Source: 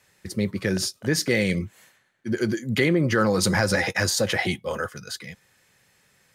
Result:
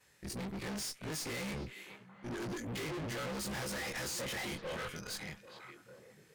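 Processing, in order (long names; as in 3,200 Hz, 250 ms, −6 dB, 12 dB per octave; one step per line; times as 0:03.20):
every overlapping window played backwards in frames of 51 ms
dynamic equaliser 8,200 Hz, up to +5 dB, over −45 dBFS, Q 1.1
tube saturation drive 41 dB, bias 0.75
on a send: echo through a band-pass that steps 413 ms, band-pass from 2,700 Hz, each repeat −1.4 octaves, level −6.5 dB
on the sum: level +2.5 dB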